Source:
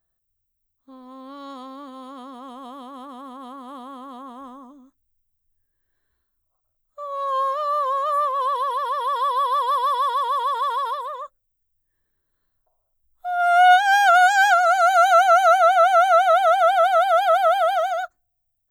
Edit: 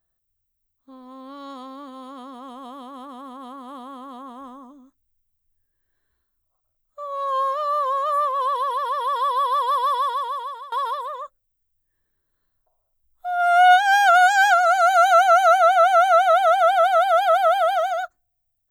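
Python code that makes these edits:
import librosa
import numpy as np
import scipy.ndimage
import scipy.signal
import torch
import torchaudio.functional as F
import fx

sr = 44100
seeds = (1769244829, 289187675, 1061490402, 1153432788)

y = fx.edit(x, sr, fx.fade_out_to(start_s=9.95, length_s=0.77, floor_db=-20.5), tone=tone)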